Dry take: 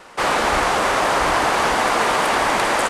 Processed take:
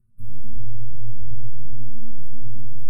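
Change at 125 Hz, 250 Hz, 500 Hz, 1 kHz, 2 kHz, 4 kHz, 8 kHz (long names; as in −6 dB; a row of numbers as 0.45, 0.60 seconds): +5.0 dB, −15.5 dB, below −40 dB, below −40 dB, below −40 dB, below −40 dB, below −30 dB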